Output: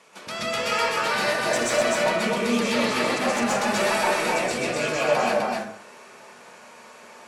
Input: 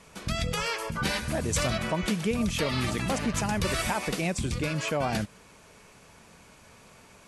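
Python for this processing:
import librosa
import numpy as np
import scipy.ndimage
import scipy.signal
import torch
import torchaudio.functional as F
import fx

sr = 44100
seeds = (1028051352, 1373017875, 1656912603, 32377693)

y = scipy.signal.sosfilt(scipy.signal.butter(2, 380.0, 'highpass', fs=sr, output='sos'), x)
y = fx.high_shelf(y, sr, hz=7900.0, db=-7.5)
y = 10.0 ** (-23.0 / 20.0) * np.tanh(y / 10.0 ** (-23.0 / 20.0))
y = y + 10.0 ** (-3.0 / 20.0) * np.pad(y, (int(253 * sr / 1000.0), 0))[:len(y)]
y = fx.rev_plate(y, sr, seeds[0], rt60_s=0.6, hf_ratio=0.45, predelay_ms=115, drr_db=-6.5)
y = y * 10.0 ** (1.0 / 20.0)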